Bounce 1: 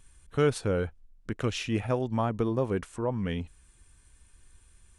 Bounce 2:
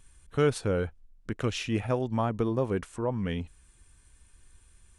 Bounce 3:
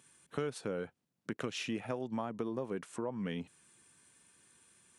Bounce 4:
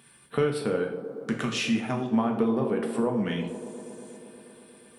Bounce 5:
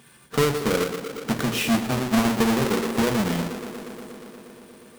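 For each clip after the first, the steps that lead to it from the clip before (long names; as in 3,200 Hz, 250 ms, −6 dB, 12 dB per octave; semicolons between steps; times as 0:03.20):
no processing that can be heard
high-pass filter 150 Hz 24 dB per octave; downward compressor 5 to 1, threshold −34 dBFS, peak gain reduction 13.5 dB
auto-filter notch square 0.48 Hz 470–6,600 Hz; delay with a band-pass on its return 119 ms, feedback 83%, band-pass 420 Hz, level −10 dB; coupled-rooms reverb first 0.5 s, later 2.3 s, from −26 dB, DRR 2 dB; level +8.5 dB
each half-wave held at its own peak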